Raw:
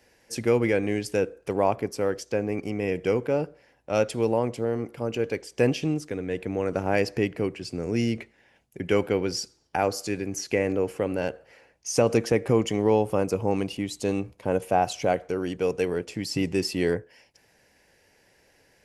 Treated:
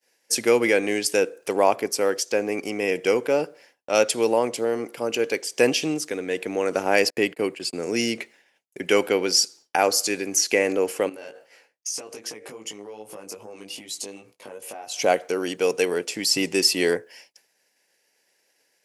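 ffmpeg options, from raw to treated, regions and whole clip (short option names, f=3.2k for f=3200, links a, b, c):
-filter_complex "[0:a]asettb=1/sr,asplit=3[a][b][c];[a]atrim=end=7.104[d];[b]atrim=start=7.1:end=7.83,asetpts=PTS-STARTPTS,afade=t=in:d=0.004:c=qsin,afade=t=out:st=0.726:d=0.004:c=qsin,agate=range=-40dB:threshold=-41dB:ratio=16:release=100:detection=peak,equalizer=f=5.8k:w=5.7:g=-9.5[e];[c]atrim=start=7.826[f];[d][e]acrossfade=d=0.004:c1=hsin:c2=qsin[g];[g][f]acrossfade=d=0.004:c1=qsin:c2=hsin,asettb=1/sr,asplit=3[h][i][j];[h]atrim=end=11.094[k];[i]atrim=start=11.09:end=14.99,asetpts=PTS-STARTPTS,afade=t=in:d=0.004:c=qsin,afade=t=out:st=3.896:d=0.004:c=qsin,acompressor=threshold=-35dB:ratio=8:attack=3.2:release=140:knee=1:detection=peak,flanger=delay=18:depth=2.2:speed=2.5[l];[j]atrim=start=14.986[m];[k][l]acrossfade=d=0.004:c1=hsin:c2=qsin[n];[n][m]acrossfade=d=0.004:c1=qsin:c2=hsin,highpass=300,agate=range=-33dB:threshold=-52dB:ratio=3:detection=peak,highshelf=f=3k:g=11,volume=4dB"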